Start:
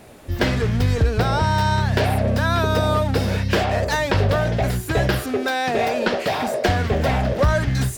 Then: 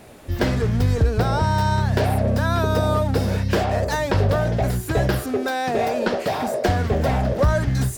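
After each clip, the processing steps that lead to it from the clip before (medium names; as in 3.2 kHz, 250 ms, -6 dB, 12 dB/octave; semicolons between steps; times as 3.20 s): dynamic bell 2.7 kHz, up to -6 dB, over -39 dBFS, Q 0.72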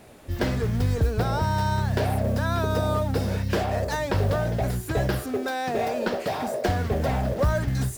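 modulation noise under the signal 29 dB; trim -4.5 dB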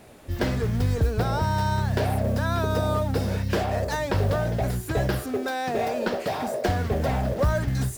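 no audible change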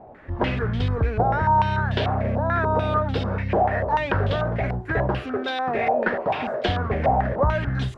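step-sequenced low-pass 6.8 Hz 800–3300 Hz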